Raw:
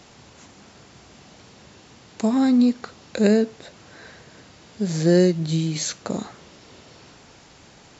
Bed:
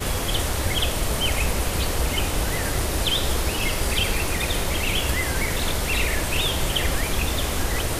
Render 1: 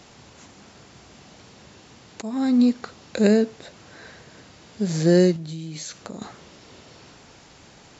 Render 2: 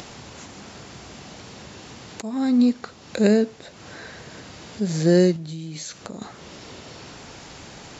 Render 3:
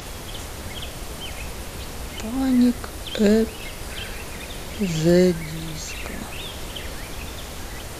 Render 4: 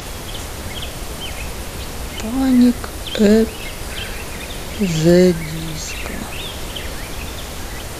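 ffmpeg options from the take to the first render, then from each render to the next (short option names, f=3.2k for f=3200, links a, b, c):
-filter_complex "[0:a]asettb=1/sr,asplit=3[a][b][c];[a]atrim=end=5.364[d];[b]atrim=start=5.36:end=6.22,asetpts=PTS-STARTPTS,afade=t=in:d=0.004:c=qsin,afade=t=out:st=0.856:d=0.004:c=qsin,acompressor=threshold=-34dB:ratio=3:attack=3.2:release=140:knee=1:detection=peak[e];[c]atrim=start=6.216[f];[d][e]acrossfade=d=0.004:c1=hsin:c2=qsin[g];[g][f]acrossfade=d=0.004:c1=qsin:c2=hsin,asplit=2[h][i];[h]atrim=end=2.22,asetpts=PTS-STARTPTS,afade=t=out:st=2.216:d=0.004:c=hsin:silence=0.177828[j];[i]atrim=start=2.22,asetpts=PTS-STARTPTS,afade=t=in:d=0.4:silence=0.177828[k];[j][k]concat=n=2:v=0:a=1"
-af "acompressor=mode=upward:threshold=-32dB:ratio=2.5"
-filter_complex "[1:a]volume=-10.5dB[a];[0:a][a]amix=inputs=2:normalize=0"
-af "volume=5.5dB,alimiter=limit=-1dB:level=0:latency=1"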